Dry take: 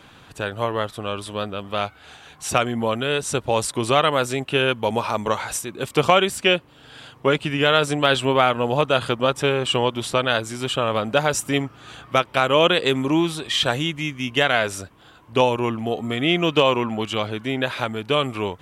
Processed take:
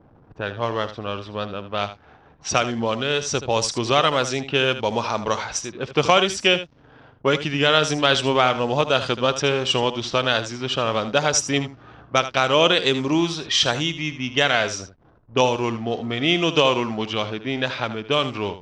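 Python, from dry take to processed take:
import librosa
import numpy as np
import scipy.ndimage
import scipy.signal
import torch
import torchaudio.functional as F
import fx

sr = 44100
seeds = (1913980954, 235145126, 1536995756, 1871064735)

y = fx.backlash(x, sr, play_db=-41.0)
y = fx.lowpass_res(y, sr, hz=5700.0, q=3.9)
y = fx.env_lowpass(y, sr, base_hz=920.0, full_db=-15.5)
y = y + 10.0 ** (-12.5 / 20.0) * np.pad(y, (int(78 * sr / 1000.0), 0))[:len(y)]
y = F.gain(torch.from_numpy(y), -1.0).numpy()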